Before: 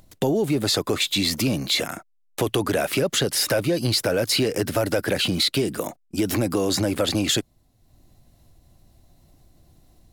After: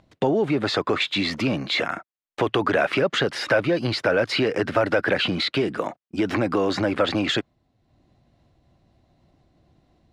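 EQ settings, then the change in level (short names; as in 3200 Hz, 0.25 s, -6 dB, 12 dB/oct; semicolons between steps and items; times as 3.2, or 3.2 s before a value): HPF 130 Hz 6 dB/oct; LPF 3100 Hz 12 dB/oct; dynamic EQ 1400 Hz, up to +7 dB, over -40 dBFS, Q 0.71; 0.0 dB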